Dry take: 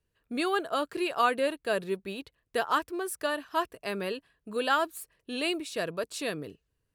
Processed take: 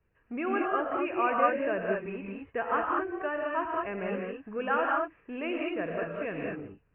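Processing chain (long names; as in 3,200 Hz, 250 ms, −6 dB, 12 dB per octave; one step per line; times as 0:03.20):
mu-law and A-law mismatch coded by mu
Butterworth low-pass 2,600 Hz 72 dB per octave
reverb whose tail is shaped and stops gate 240 ms rising, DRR −1 dB
level −4 dB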